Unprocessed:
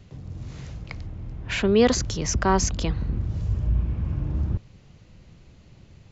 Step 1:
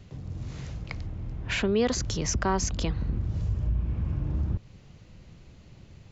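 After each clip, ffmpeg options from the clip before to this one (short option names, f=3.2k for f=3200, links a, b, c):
-af "acompressor=threshold=-26dB:ratio=2"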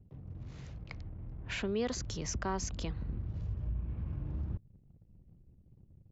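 -af "anlmdn=0.00631,volume=-9dB"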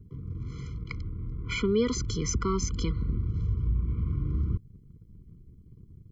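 -af "afftfilt=real='re*eq(mod(floor(b*sr/1024/490),2),0)':imag='im*eq(mod(floor(b*sr/1024/490),2),0)':win_size=1024:overlap=0.75,volume=9dB"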